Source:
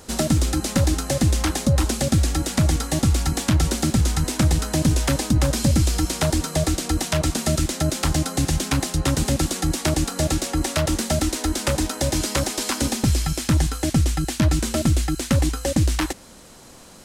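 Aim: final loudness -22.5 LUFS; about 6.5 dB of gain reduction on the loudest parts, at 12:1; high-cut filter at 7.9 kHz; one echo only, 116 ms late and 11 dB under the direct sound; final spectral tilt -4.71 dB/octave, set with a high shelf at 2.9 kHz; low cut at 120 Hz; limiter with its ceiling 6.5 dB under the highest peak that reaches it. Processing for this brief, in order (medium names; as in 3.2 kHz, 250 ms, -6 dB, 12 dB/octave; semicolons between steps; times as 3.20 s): high-pass 120 Hz; low-pass 7.9 kHz; treble shelf 2.9 kHz -5 dB; compression 12:1, threshold -22 dBFS; peak limiter -17.5 dBFS; delay 116 ms -11 dB; trim +6.5 dB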